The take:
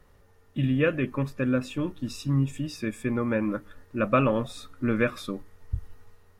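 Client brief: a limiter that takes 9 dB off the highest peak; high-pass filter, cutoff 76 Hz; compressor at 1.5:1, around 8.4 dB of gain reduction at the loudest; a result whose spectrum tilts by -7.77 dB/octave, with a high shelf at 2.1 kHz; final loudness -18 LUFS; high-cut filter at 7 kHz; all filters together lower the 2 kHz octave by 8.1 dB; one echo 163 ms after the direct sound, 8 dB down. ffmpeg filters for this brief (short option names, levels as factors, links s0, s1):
-af "highpass=76,lowpass=7000,equalizer=f=2000:t=o:g=-7,highshelf=f=2100:g=-7,acompressor=threshold=0.00708:ratio=1.5,alimiter=level_in=1.68:limit=0.0631:level=0:latency=1,volume=0.596,aecho=1:1:163:0.398,volume=11.9"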